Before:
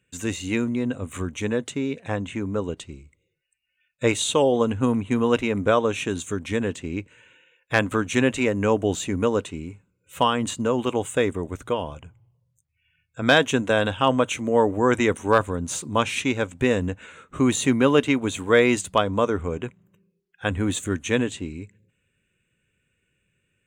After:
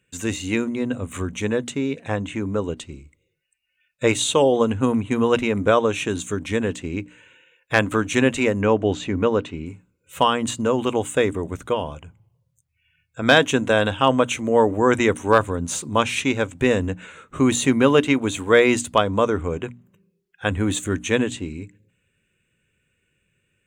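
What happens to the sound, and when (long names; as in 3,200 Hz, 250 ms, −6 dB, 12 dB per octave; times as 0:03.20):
0:08.61–0:09.66: low-pass filter 4,100 Hz
whole clip: mains-hum notches 60/120/180/240/300 Hz; level +2.5 dB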